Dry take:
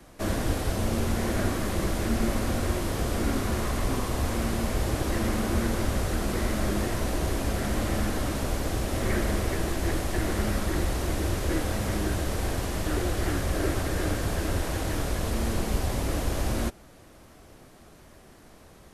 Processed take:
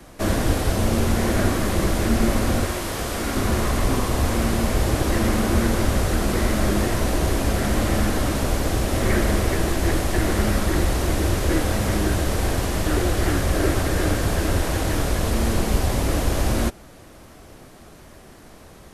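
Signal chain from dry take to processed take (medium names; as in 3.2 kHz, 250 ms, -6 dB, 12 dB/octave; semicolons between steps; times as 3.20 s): 2.65–3.37 s: bass shelf 460 Hz -8.5 dB; trim +6.5 dB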